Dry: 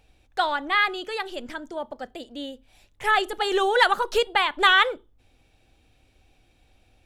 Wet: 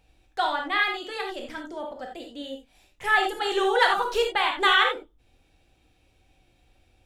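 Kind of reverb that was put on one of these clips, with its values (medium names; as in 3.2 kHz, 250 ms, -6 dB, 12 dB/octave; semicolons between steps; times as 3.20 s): gated-style reverb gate 110 ms flat, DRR 1 dB; trim -4 dB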